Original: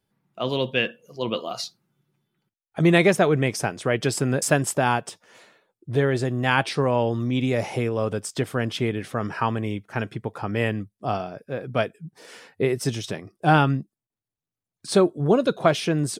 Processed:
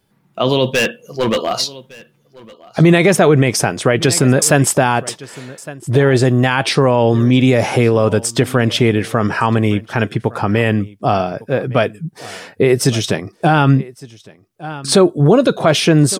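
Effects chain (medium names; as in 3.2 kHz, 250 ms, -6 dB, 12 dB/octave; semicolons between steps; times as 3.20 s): 0.70–1.61 s: hard clipper -24 dBFS, distortion -22 dB; on a send: delay 1160 ms -23 dB; on the sum: loudness maximiser +14 dB; trim -1 dB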